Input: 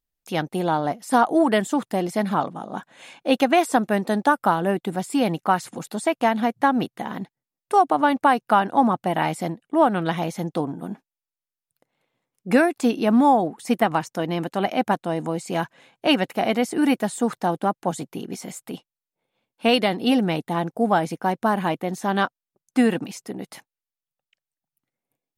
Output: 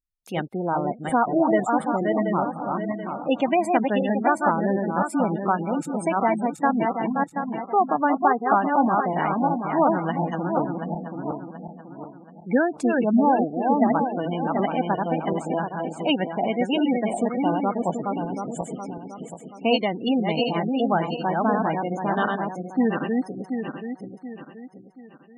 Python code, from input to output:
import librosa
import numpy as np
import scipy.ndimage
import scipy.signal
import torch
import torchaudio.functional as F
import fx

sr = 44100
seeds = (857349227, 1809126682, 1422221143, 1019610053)

y = fx.reverse_delay_fb(x, sr, ms=365, feedback_pct=61, wet_db=-3)
y = fx.spec_gate(y, sr, threshold_db=-20, keep='strong')
y = y * librosa.db_to_amplitude(-3.0)